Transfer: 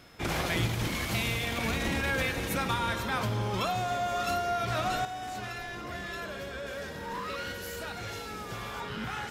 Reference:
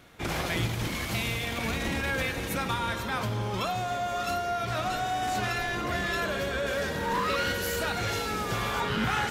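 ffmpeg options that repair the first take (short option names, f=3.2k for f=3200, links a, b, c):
-af "bandreject=f=5.2k:w=30,asetnsamples=n=441:p=0,asendcmd='5.05 volume volume 8.5dB',volume=0dB"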